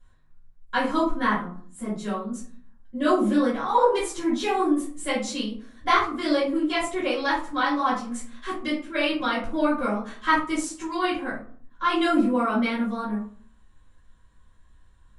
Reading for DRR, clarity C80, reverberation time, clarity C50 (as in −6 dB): −9.5 dB, 10.5 dB, 0.50 s, 5.5 dB